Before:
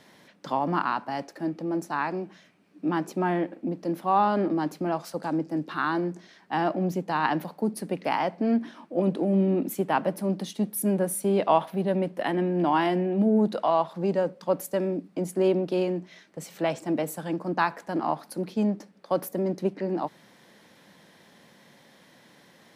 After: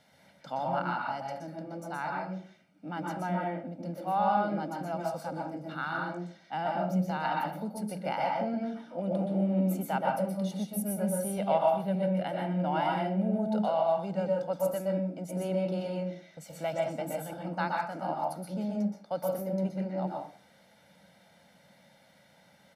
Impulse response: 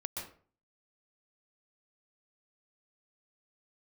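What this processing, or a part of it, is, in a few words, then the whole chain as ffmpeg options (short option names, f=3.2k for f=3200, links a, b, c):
microphone above a desk: -filter_complex "[0:a]aecho=1:1:1.4:0.69[a];[1:a]atrim=start_sample=2205[b];[a][b]afir=irnorm=-1:irlink=0,volume=-7dB"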